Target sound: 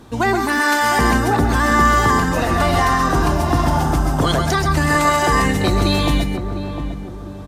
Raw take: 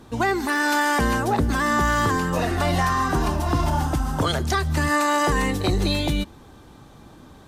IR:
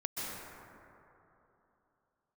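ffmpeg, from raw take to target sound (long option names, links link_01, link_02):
-filter_complex "[0:a]asplit=2[link_01][link_02];[link_02]adelay=705,lowpass=frequency=1000:poles=1,volume=-7.5dB,asplit=2[link_03][link_04];[link_04]adelay=705,lowpass=frequency=1000:poles=1,volume=0.44,asplit=2[link_05][link_06];[link_06]adelay=705,lowpass=frequency=1000:poles=1,volume=0.44,asplit=2[link_07][link_08];[link_08]adelay=705,lowpass=frequency=1000:poles=1,volume=0.44,asplit=2[link_09][link_10];[link_10]adelay=705,lowpass=frequency=1000:poles=1,volume=0.44[link_11];[link_01][link_03][link_05][link_07][link_09][link_11]amix=inputs=6:normalize=0[link_12];[1:a]atrim=start_sample=2205,atrim=end_sample=6174[link_13];[link_12][link_13]afir=irnorm=-1:irlink=0,volume=6.5dB"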